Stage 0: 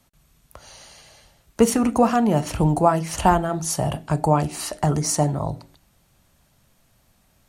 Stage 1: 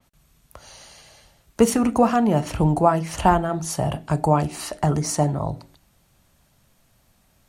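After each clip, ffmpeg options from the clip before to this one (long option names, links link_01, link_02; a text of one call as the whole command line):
ffmpeg -i in.wav -af "adynamicequalizer=threshold=0.00794:dfrequency=4100:dqfactor=0.7:tfrequency=4100:tqfactor=0.7:attack=5:release=100:ratio=0.375:range=2.5:mode=cutabove:tftype=highshelf" out.wav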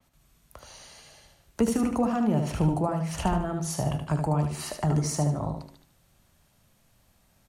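ffmpeg -i in.wav -filter_complex "[0:a]acrossover=split=270[link_01][link_02];[link_02]acompressor=threshold=-27dB:ratio=2.5[link_03];[link_01][link_03]amix=inputs=2:normalize=0,asplit=2[link_04][link_05];[link_05]aecho=0:1:75|150|225|300:0.501|0.155|0.0482|0.0149[link_06];[link_04][link_06]amix=inputs=2:normalize=0,volume=-4dB" out.wav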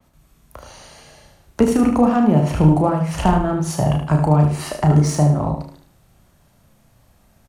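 ffmpeg -i in.wav -filter_complex "[0:a]asplit=2[link_01][link_02];[link_02]adynamicsmooth=sensitivity=7.5:basefreq=2100,volume=-1dB[link_03];[link_01][link_03]amix=inputs=2:normalize=0,asplit=2[link_04][link_05];[link_05]adelay=33,volume=-6dB[link_06];[link_04][link_06]amix=inputs=2:normalize=0,volume=3.5dB" out.wav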